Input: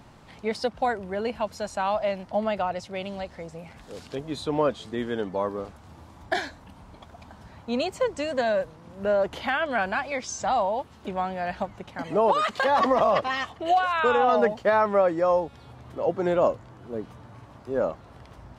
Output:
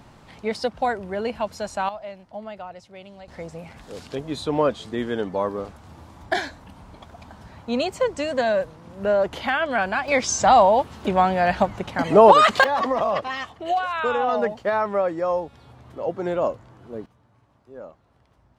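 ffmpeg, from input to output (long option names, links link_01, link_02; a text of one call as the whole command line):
ffmpeg -i in.wav -af "asetnsamples=nb_out_samples=441:pad=0,asendcmd='1.89 volume volume -9.5dB;3.28 volume volume 3dB;10.08 volume volume 10dB;12.64 volume volume -1.5dB;17.06 volume volume -14dB',volume=2dB" out.wav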